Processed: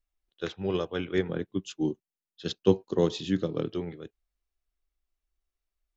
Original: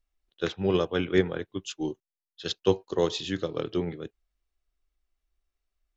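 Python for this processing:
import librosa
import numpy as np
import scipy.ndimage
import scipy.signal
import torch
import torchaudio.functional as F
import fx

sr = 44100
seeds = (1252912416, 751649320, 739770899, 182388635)

y = fx.peak_eq(x, sr, hz=200.0, db=11.5, octaves=1.8, at=(1.29, 3.7))
y = y * librosa.db_to_amplitude(-4.5)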